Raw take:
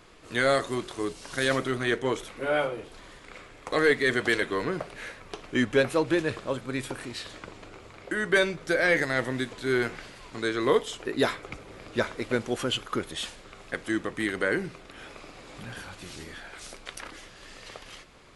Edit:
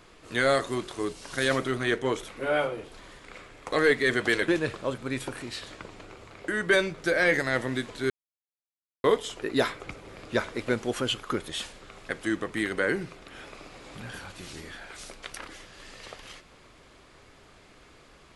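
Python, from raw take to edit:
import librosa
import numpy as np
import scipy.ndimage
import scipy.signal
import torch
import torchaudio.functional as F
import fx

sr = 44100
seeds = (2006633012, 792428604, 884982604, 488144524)

y = fx.edit(x, sr, fx.cut(start_s=4.48, length_s=1.63),
    fx.silence(start_s=9.73, length_s=0.94), tone=tone)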